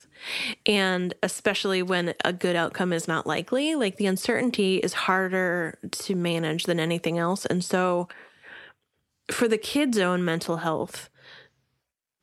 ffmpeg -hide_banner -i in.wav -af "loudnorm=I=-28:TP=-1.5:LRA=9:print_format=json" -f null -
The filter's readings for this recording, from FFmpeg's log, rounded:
"input_i" : "-25.6",
"input_tp" : "-5.3",
"input_lra" : "2.3",
"input_thresh" : "-36.3",